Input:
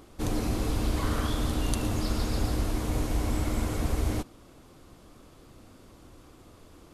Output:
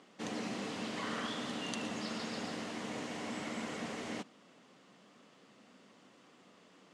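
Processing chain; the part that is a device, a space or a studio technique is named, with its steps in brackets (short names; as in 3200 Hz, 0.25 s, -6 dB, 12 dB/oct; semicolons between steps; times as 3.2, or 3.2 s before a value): television speaker (speaker cabinet 190–7700 Hz, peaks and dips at 190 Hz +5 dB, 330 Hz -8 dB, 1900 Hz +7 dB, 2900 Hz +6 dB); gain -6 dB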